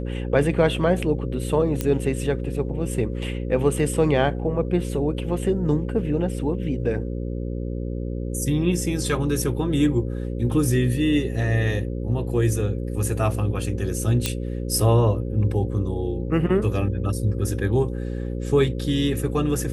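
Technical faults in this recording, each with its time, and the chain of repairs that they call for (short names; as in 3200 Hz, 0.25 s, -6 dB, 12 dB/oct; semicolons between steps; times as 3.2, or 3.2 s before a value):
buzz 60 Hz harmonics 9 -28 dBFS
1.81 pop -10 dBFS
14.26 pop -7 dBFS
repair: de-click; de-hum 60 Hz, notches 9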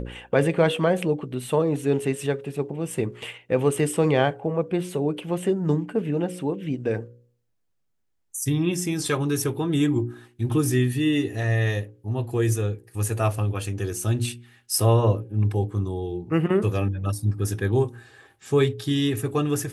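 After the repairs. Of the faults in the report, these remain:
none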